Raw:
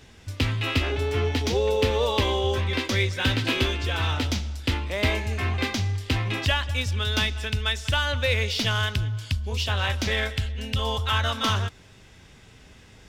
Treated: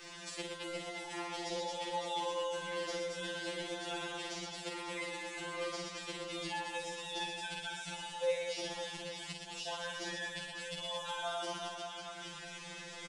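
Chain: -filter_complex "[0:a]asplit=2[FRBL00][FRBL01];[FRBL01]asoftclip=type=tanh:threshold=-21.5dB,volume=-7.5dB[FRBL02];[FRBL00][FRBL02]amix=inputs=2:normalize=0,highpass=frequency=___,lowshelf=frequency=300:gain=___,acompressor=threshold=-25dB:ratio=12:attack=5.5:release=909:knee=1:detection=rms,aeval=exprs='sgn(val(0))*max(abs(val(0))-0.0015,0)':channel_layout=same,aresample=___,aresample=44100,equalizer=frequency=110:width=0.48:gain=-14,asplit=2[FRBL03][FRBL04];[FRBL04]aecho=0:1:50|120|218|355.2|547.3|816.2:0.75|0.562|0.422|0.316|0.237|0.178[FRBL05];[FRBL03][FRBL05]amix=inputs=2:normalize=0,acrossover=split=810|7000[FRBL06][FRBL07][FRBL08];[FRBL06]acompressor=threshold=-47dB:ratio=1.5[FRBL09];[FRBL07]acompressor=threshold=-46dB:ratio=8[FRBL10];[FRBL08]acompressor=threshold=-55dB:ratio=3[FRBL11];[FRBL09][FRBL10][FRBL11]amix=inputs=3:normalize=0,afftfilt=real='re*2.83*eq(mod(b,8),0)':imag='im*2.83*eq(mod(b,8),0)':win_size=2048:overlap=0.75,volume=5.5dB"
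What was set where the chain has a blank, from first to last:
45, 2.5, 22050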